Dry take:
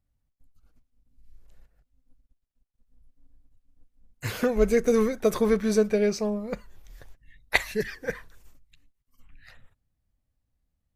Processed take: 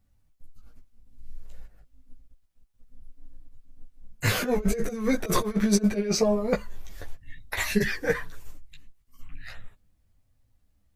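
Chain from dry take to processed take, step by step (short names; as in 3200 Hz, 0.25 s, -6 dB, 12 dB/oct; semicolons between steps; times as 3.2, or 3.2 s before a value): negative-ratio compressor -27 dBFS, ratio -0.5; chorus voices 6, 0.25 Hz, delay 15 ms, depth 5 ms; gain +7 dB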